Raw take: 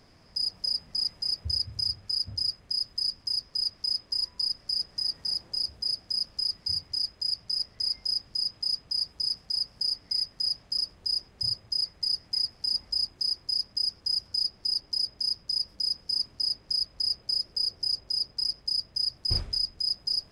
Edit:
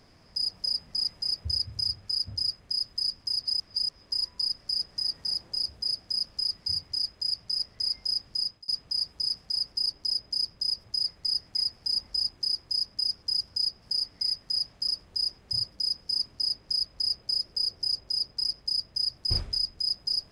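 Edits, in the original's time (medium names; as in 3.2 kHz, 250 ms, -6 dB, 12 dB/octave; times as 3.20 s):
3.43–4.01 s: reverse
8.43–8.68 s: fade out
9.72–11.62 s: swap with 14.60–15.72 s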